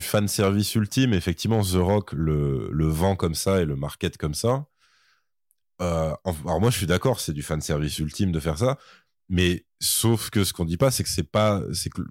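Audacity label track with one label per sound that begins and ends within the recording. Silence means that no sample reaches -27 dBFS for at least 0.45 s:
5.810000	8.740000	sound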